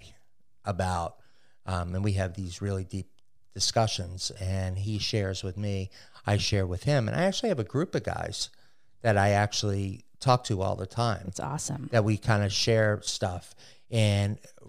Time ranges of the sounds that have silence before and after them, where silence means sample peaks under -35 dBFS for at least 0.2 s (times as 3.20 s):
0.67–1.08 s
1.68–3.02 s
3.56–5.86 s
6.27–8.46 s
9.04–9.96 s
10.22–13.38 s
13.93–14.34 s